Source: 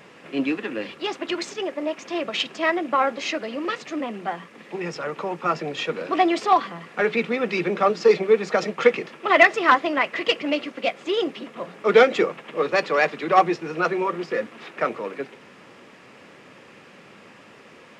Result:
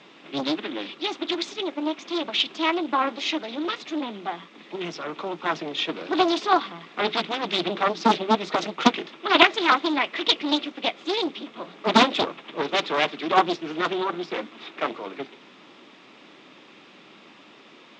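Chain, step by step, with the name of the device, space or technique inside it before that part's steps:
full-range speaker at full volume (highs frequency-modulated by the lows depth 0.97 ms; loudspeaker in its box 200–6,800 Hz, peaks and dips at 310 Hz +5 dB, 500 Hz −7 dB, 1,700 Hz −5 dB, 3,600 Hz +10 dB)
level −1.5 dB

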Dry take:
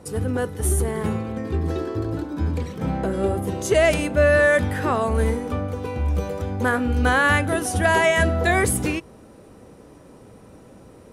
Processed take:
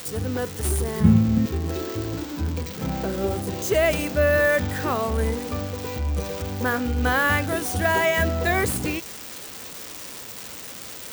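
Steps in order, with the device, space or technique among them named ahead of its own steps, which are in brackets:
0:01.00–0:01.46: low shelf with overshoot 300 Hz +12 dB, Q 1.5
budget class-D amplifier (gap after every zero crossing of 0.053 ms; spike at every zero crossing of −16.5 dBFS)
level −3 dB

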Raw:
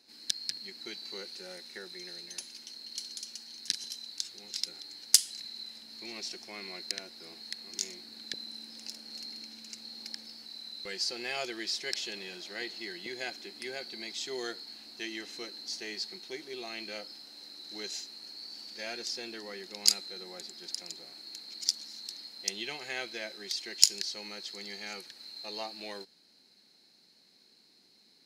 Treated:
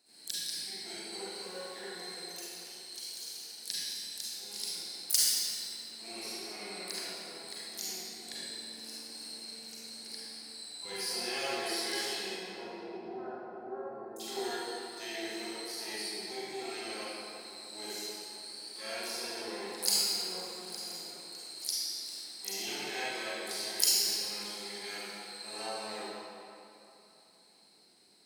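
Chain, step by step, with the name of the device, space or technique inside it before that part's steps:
0:12.31–0:14.20: elliptic low-pass filter 940 Hz, stop band 40 dB
shimmer-style reverb (pitch-shifted copies added +12 semitones −5 dB; convolution reverb RT60 3.0 s, pre-delay 32 ms, DRR −9.5 dB)
level −9 dB

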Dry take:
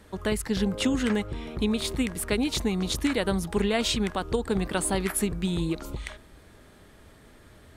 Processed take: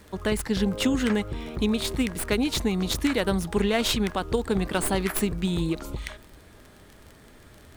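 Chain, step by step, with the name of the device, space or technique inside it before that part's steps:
record under a worn stylus (stylus tracing distortion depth 0.06 ms; surface crackle 26 per second −37 dBFS; pink noise bed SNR 37 dB)
level +1.5 dB

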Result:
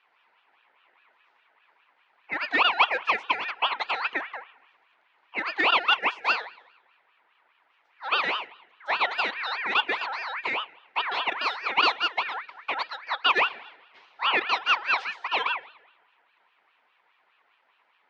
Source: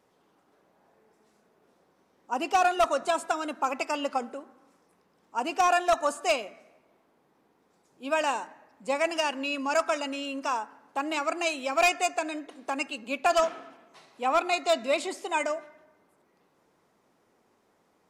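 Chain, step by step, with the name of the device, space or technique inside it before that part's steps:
high-shelf EQ 5,000 Hz −6 dB
voice changer toy (ring modulator whose carrier an LFO sweeps 1,600 Hz, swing 35%, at 4.9 Hz; loudspeaker in its box 510–4,100 Hz, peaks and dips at 590 Hz −4 dB, 990 Hz +5 dB, 1,600 Hz −3 dB)
level +5 dB

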